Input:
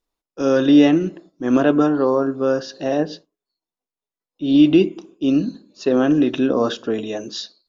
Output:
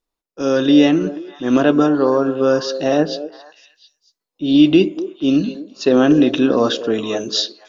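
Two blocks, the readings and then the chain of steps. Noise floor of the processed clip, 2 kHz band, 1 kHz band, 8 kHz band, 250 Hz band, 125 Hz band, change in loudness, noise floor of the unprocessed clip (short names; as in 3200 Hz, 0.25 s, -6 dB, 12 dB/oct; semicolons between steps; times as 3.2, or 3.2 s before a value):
-83 dBFS, +3.5 dB, +3.0 dB, n/a, +2.0 dB, +2.0 dB, +2.0 dB, under -85 dBFS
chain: dynamic EQ 4200 Hz, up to +5 dB, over -43 dBFS, Q 0.91; AGC gain up to 8 dB; on a send: delay with a stepping band-pass 0.237 s, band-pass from 450 Hz, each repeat 1.4 oct, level -10 dB; on the sum: gain -1 dB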